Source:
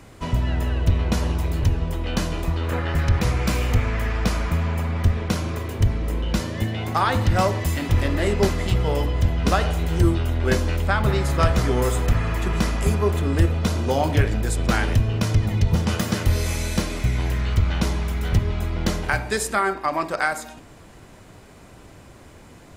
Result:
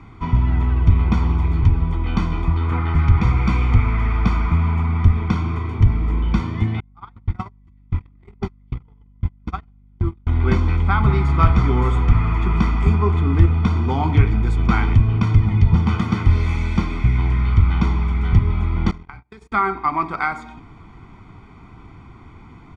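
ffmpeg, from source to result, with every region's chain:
-filter_complex "[0:a]asettb=1/sr,asplit=3[s0][s1][s2];[s0]atrim=end=6.804[s3];[s1]atrim=start=6.8:end=10.27,asetpts=PTS-STARTPTS,afade=t=in:d=0.004:c=qsin,afade=t=out:st=3.466:d=0.004:c=qsin,agate=range=0.00398:threshold=0.158:ratio=16:release=100:detection=peak,acompressor=threshold=0.1:ratio=4:attack=3.2:release=140:knee=1:detection=peak,aeval=exprs='val(0)+0.002*(sin(2*PI*50*n/s)+sin(2*PI*2*50*n/s)/2+sin(2*PI*3*50*n/s)/3+sin(2*PI*4*50*n/s)/4+sin(2*PI*5*50*n/s)/5)':c=same[s4];[s2]atrim=start=10.266[s5];[s3][s4]acrossfade=d=0.004:c1=hsin:c2=qsin[s6];[s6][s5]acrossfade=d=0.004:c1=qsin:c2=hsin,asettb=1/sr,asplit=3[s7][s8][s9];[s7]atrim=end=18.914[s10];[s8]atrim=start=18.91:end=19.52,asetpts=PTS-STARTPTS,afade=t=in:d=0.004:c=qsin,afade=t=out:st=0.606:d=0.004:c=qsin,agate=range=0.00891:threshold=0.0562:ratio=16:release=100:detection=peak,acompressor=threshold=0.0178:ratio=20:attack=3.2:release=140:knee=1:detection=peak[s11];[s9]atrim=start=19.516[s12];[s10][s11]acrossfade=d=0.004:c1=hsin:c2=qsin[s13];[s13][s12]acrossfade=d=0.004:c1=qsin:c2=hsin,lowpass=2400,aecho=1:1:0.9:0.91"

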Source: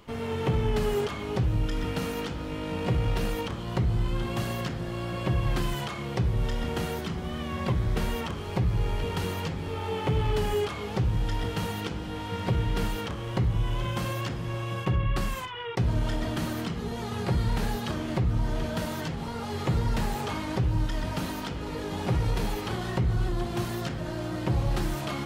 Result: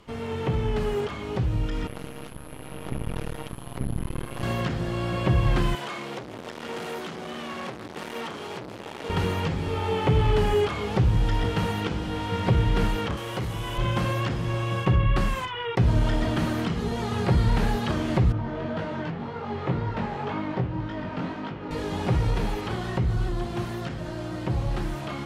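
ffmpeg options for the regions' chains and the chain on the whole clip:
-filter_complex "[0:a]asettb=1/sr,asplit=3[s0][s1][s2];[s0]atrim=end=1.874[s3];[s1]atrim=start=1.87:end=4.43,asetpts=PTS-STARTPTS,afade=t=in:d=0.004:c=qsin,afade=t=out:st=2.556:d=0.004:c=qsin,aeval=exprs='val(0)+0.0126*sin(2*PI*11000*n/s)':c=same,aeval=exprs='max(val(0),0)':c=same,tremolo=f=140:d=0.889[s4];[s2]atrim=start=4.426[s5];[s3][s4]acrossfade=d=0.004:c1=hsin:c2=qsin[s6];[s6][s5]acrossfade=d=0.004:c1=qsin:c2=hsin,asettb=1/sr,asplit=3[s7][s8][s9];[s7]atrim=end=5.754[s10];[s8]atrim=start=5.75:end=9.1,asetpts=PTS-STARTPTS,afade=t=in:d=0.004:c=qsin,afade=t=out:st=3.346:d=0.004:c=qsin,volume=50.1,asoftclip=hard,volume=0.02,highpass=260[s11];[s9]atrim=start=9.096[s12];[s10][s11]acrossfade=d=0.004:c1=hsin:c2=qsin[s13];[s13][s12]acrossfade=d=0.004:c1=qsin:c2=hsin,asettb=1/sr,asplit=3[s14][s15][s16];[s14]atrim=end=13.174[s17];[s15]atrim=start=13.17:end=13.78,asetpts=PTS-STARTPTS,afade=t=in:d=0.004:c=qsin,afade=t=out:st=0.606:d=0.004:c=qsin,aemphasis=mode=production:type=bsi,asoftclip=type=hard:threshold=0.0335[s18];[s16]atrim=start=13.776[s19];[s17][s18]acrossfade=d=0.004:c1=hsin:c2=qsin[s20];[s20][s19]acrossfade=d=0.004:c1=qsin:c2=hsin,asettb=1/sr,asplit=3[s21][s22][s23];[s21]atrim=end=18.324[s24];[s22]atrim=start=18.32:end=21.71,asetpts=PTS-STARTPTS,afade=t=in:d=0.004:c=qsin,afade=t=out:st=3.386:d=0.004:c=qsin,highpass=120,lowpass=2300,flanger=delay=19:depth=4.5:speed=1.9[s25];[s23]atrim=start=21.706[s26];[s24][s25]acrossfade=d=0.004:c1=hsin:c2=qsin[s27];[s27][s26]acrossfade=d=0.004:c1=qsin:c2=hsin,acrossover=split=3400[s28][s29];[s29]acompressor=threshold=0.00398:ratio=4:attack=1:release=60[s30];[s28][s30]amix=inputs=2:normalize=0,lowpass=12000,dynaudnorm=f=320:g=21:m=1.78"

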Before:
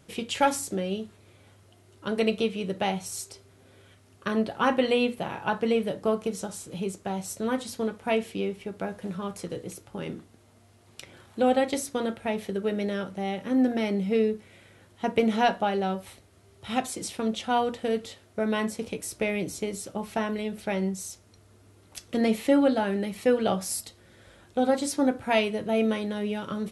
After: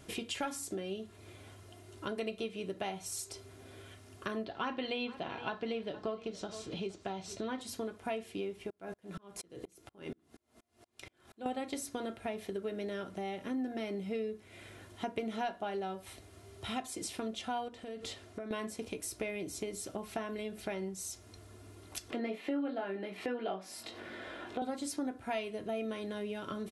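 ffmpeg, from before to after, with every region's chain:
-filter_complex "[0:a]asettb=1/sr,asplit=3[s0][s1][s2];[s0]atrim=end=4.454[s3];[s1]atrim=start=4.45:end=7.61,asetpts=PTS-STARTPTS,afade=t=in:d=0.004:c=qsin,afade=t=out:st=3.156:d=0.004:c=qsin,lowpass=f=4200:t=q:w=1.6,aecho=1:1:466:0.1,atrim=end_sample=139356[s4];[s2]atrim=start=7.606[s5];[s3][s4]acrossfade=d=0.004:c1=hsin:c2=qsin[s6];[s6][s5]acrossfade=d=0.004:c1=qsin:c2=hsin,asettb=1/sr,asplit=3[s7][s8][s9];[s7]atrim=end=8.704[s10];[s8]atrim=start=8.7:end=11.46,asetpts=PTS-STARTPTS,afade=t=in:d=0.004:c=qsin,afade=t=out:st=2.756:d=0.004:c=qsin,bandreject=f=50:t=h:w=6,bandreject=f=100:t=h:w=6,bandreject=f=150:t=h:w=6,aeval=exprs='val(0)*pow(10,-38*if(lt(mod(-4.2*n/s,1),2*abs(-4.2)/1000),1-mod(-4.2*n/s,1)/(2*abs(-4.2)/1000),(mod(-4.2*n/s,1)-2*abs(-4.2)/1000)/(1-2*abs(-4.2)/1000))/20)':c=same[s11];[s9]atrim=start=11.456[s12];[s10][s11]acrossfade=d=0.004:c1=hsin:c2=qsin[s13];[s13][s12]acrossfade=d=0.004:c1=qsin:c2=hsin,asettb=1/sr,asplit=3[s14][s15][s16];[s14]atrim=end=17.684[s17];[s15]atrim=start=17.68:end=18.51,asetpts=PTS-STARTPTS,afade=t=in:d=0.004:c=qsin,afade=t=out:st=0.826:d=0.004:c=qsin,lowpass=9700,acompressor=threshold=0.0158:ratio=12:attack=3.2:release=140:knee=1:detection=peak[s18];[s16]atrim=start=18.506[s19];[s17][s18]acrossfade=d=0.004:c1=hsin:c2=qsin[s20];[s20][s19]acrossfade=d=0.004:c1=qsin:c2=hsin,asettb=1/sr,asplit=3[s21][s22][s23];[s21]atrim=end=22.104[s24];[s22]atrim=start=22.1:end=24.62,asetpts=PTS-STARTPTS,afade=t=in:d=0.004:c=qsin,afade=t=out:st=2.516:d=0.004:c=qsin,acrossover=split=200 3700:gain=0.0891 1 0.126[s25][s26][s27];[s25][s26][s27]amix=inputs=3:normalize=0,acompressor=mode=upward:threshold=0.0112:ratio=2.5:attack=3.2:release=140:knee=2.83:detection=peak,asplit=2[s28][s29];[s29]adelay=21,volume=0.596[s30];[s28][s30]amix=inputs=2:normalize=0,atrim=end_sample=111132[s31];[s23]atrim=start=24.616[s32];[s24][s31]acrossfade=d=0.004:c1=hsin:c2=qsin[s33];[s33][s32]acrossfade=d=0.004:c1=qsin:c2=hsin,aecho=1:1:2.9:0.41,acompressor=threshold=0.00794:ratio=3,volume=1.33"

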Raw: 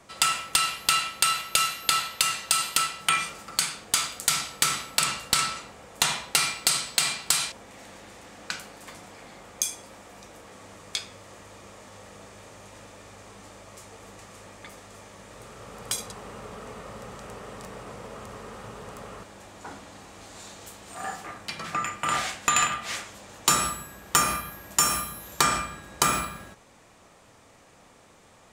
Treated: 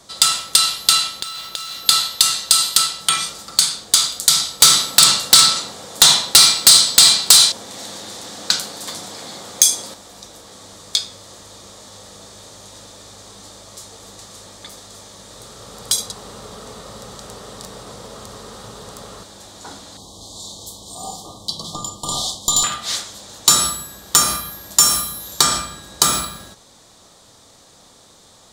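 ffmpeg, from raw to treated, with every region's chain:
-filter_complex "[0:a]asettb=1/sr,asplit=3[s0][s1][s2];[s0]atrim=end=1.204[s3];[s1]atrim=start=1.2:end=1.86,asetpts=PTS-STARTPTS,afade=t=in:d=0.004:c=qsin,afade=t=out:st=0.656:d=0.004:c=qsin,equalizer=f=12000:t=o:w=1.6:g=-9,acompressor=threshold=0.0224:ratio=10:attack=3.2:release=140:knee=1:detection=peak,acrusher=bits=4:mode=log:mix=0:aa=0.000001[s4];[s2]atrim=start=1.856[s5];[s3][s4]acrossfade=d=0.004:c1=hsin:c2=qsin[s6];[s6][s5]acrossfade=d=0.004:c1=qsin:c2=hsin,asettb=1/sr,asplit=3[s7][s8][s9];[s7]atrim=end=4.604[s10];[s8]atrim=start=4.6:end=9.94,asetpts=PTS-STARTPTS,afade=t=in:d=0.004:c=qsin,afade=t=out:st=5.336:d=0.004:c=qsin,highpass=110,acontrast=65[s11];[s9]atrim=start=9.936[s12];[s10][s11]acrossfade=d=0.004:c1=hsin:c2=qsin[s13];[s13][s12]acrossfade=d=0.004:c1=qsin:c2=hsin,asettb=1/sr,asplit=3[s14][s15][s16];[s14]atrim=end=19.974[s17];[s15]atrim=start=19.97:end=22.64,asetpts=PTS-STARTPTS,afade=t=in:d=0.004:c=qsin,afade=t=out:st=2.666:d=0.004:c=qsin,lowshelf=f=230:g=5.5,aeval=exprs='(tanh(6.31*val(0)+0.35)-tanh(0.35))/6.31':c=same,asuperstop=centerf=1900:order=20:qfactor=1[s18];[s16]atrim=start=22.636[s19];[s17][s18]acrossfade=d=0.004:c1=hsin:c2=qsin[s20];[s20][s19]acrossfade=d=0.004:c1=qsin:c2=hsin,highshelf=f=3100:t=q:w=3:g=6.5,acontrast=23,volume=0.891"

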